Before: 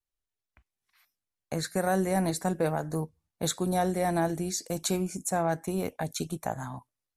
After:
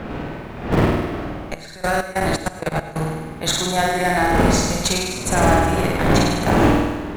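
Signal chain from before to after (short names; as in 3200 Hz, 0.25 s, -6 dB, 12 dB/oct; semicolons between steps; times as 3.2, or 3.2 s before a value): wind noise 320 Hz -28 dBFS; bell 2400 Hz +13.5 dB 2.9 oct; added noise pink -62 dBFS; in parallel at -4 dB: Schmitt trigger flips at -15.5 dBFS; on the sum: flutter echo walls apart 8.7 m, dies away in 1.2 s; 1.54–2.96 level quantiser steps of 19 dB; non-linear reverb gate 0.14 s rising, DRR 11.5 dB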